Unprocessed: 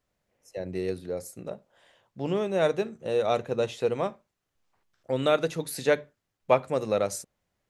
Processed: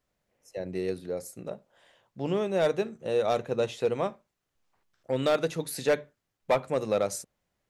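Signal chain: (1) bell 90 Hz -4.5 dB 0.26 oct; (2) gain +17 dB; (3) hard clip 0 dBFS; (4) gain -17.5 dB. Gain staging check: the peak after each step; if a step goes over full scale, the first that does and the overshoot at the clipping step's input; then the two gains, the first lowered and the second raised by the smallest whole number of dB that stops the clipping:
-8.0, +9.0, 0.0, -17.5 dBFS; step 2, 9.0 dB; step 2 +8 dB, step 4 -8.5 dB

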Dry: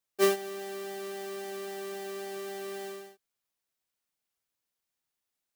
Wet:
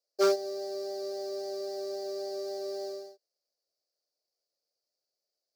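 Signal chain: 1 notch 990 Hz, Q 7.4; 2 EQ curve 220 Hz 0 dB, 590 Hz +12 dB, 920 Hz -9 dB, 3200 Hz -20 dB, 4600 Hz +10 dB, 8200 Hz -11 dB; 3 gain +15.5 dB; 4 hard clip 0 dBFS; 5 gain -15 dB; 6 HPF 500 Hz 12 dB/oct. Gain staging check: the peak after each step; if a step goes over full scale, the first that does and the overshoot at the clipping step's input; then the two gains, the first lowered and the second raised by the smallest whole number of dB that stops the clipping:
-13.0, -7.0, +8.5, 0.0, -15.0, -13.5 dBFS; step 3, 8.5 dB; step 3 +6.5 dB, step 5 -6 dB

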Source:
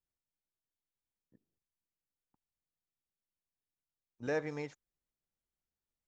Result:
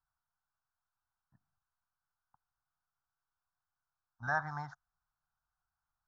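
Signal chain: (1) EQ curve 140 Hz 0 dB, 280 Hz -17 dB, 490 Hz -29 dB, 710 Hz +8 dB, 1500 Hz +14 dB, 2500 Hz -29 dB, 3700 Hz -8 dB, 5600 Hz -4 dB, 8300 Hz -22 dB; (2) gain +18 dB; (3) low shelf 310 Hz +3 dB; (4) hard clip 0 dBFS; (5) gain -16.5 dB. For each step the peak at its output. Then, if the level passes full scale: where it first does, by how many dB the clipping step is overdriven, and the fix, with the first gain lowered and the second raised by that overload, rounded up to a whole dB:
-21.5, -3.5, -3.0, -3.0, -19.5 dBFS; no overload

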